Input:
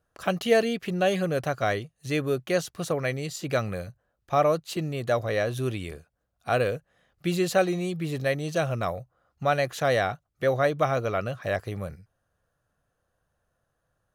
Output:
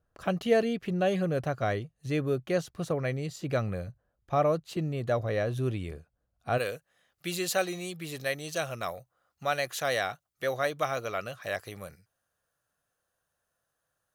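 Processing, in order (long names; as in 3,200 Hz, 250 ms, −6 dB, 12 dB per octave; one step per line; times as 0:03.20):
spectral tilt −1.5 dB per octave, from 0:06.57 +2.5 dB per octave
level −4.5 dB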